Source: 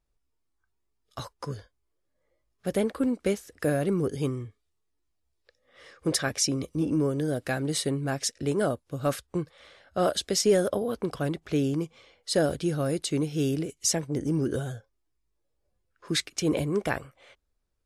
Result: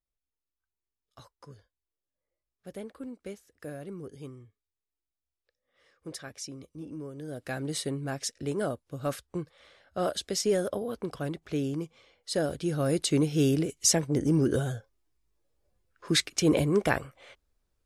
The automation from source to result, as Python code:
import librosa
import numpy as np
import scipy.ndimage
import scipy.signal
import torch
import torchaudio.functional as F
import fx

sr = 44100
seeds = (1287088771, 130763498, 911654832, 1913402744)

y = fx.gain(x, sr, db=fx.line((7.11, -14.5), (7.58, -4.5), (12.54, -4.5), (12.99, 2.5)))